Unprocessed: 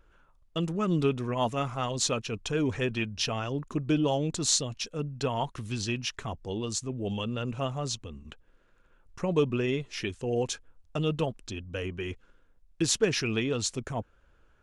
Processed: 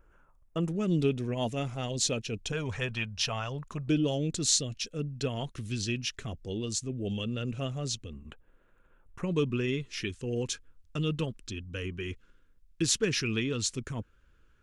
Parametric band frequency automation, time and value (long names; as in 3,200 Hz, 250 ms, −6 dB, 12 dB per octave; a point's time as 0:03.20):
parametric band −14 dB 0.89 octaves
3,900 Hz
from 0:00.69 1,100 Hz
from 0:02.52 310 Hz
from 0:03.88 930 Hz
from 0:08.13 5,100 Hz
from 0:09.23 720 Hz